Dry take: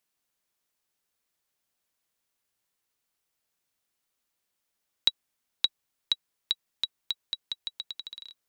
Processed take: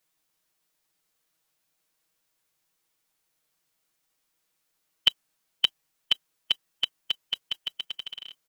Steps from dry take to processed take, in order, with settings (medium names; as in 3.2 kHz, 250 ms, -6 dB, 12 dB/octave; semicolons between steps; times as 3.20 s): comb 6.3 ms, depth 83%; formant shift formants -4 st; trim +2.5 dB